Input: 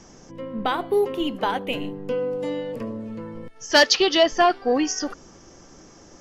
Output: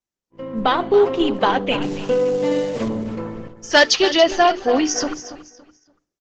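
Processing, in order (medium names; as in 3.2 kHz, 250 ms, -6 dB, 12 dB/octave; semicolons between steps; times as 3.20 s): 1.82–2.88 s: one-bit delta coder 64 kbps, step -38.5 dBFS; gate -38 dBFS, range -45 dB; hum notches 60/120/180/240/300/360/420 Hz; level rider gain up to 10 dB; feedback delay 283 ms, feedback 29%, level -13.5 dB; resampled via 16 kHz; trim -1.5 dB; Opus 12 kbps 48 kHz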